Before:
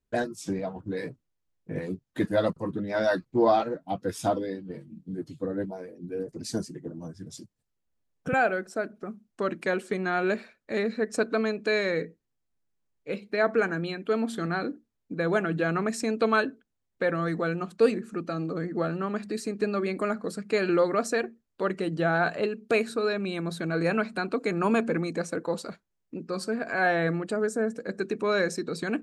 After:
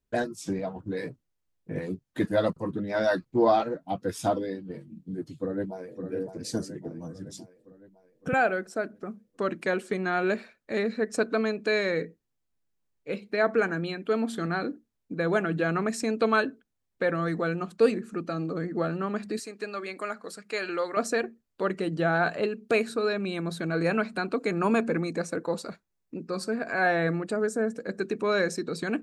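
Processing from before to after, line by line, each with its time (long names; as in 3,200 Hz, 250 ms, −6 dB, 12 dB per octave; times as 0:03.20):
0:05.35–0:06.04: delay throw 560 ms, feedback 55%, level −7.5 dB
0:19.39–0:20.97: high-pass filter 1,000 Hz 6 dB per octave
0:24.63–0:27.45: notch filter 3,100 Hz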